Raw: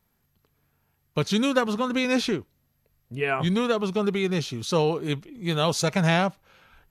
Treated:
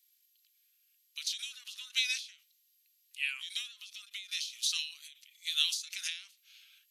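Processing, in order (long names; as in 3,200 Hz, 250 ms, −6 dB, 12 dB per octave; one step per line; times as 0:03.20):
inverse Chebyshev high-pass filter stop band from 650 Hz, stop band 70 dB
every ending faded ahead of time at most 120 dB per second
level +6 dB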